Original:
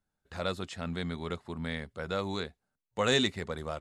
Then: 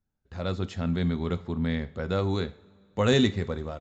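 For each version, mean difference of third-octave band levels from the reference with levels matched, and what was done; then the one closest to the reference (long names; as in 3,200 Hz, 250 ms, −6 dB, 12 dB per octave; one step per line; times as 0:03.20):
5.0 dB: low-shelf EQ 410 Hz +11.5 dB
automatic gain control gain up to 7 dB
coupled-rooms reverb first 0.41 s, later 2.5 s, from −20 dB, DRR 12 dB
downsampling to 16,000 Hz
level −7 dB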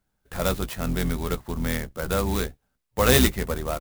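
7.0 dB: sub-octave generator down 2 octaves, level +1 dB
high-shelf EQ 8,500 Hz +7 dB
double-tracking delay 16 ms −11.5 dB
converter with an unsteady clock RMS 0.051 ms
level +7 dB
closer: first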